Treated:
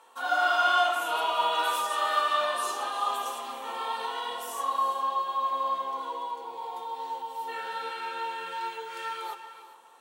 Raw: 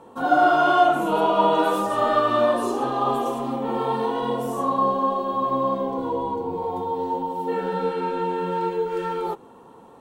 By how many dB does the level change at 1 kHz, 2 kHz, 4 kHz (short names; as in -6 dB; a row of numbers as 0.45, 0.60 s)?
-5.5, -0.5, +3.0 dB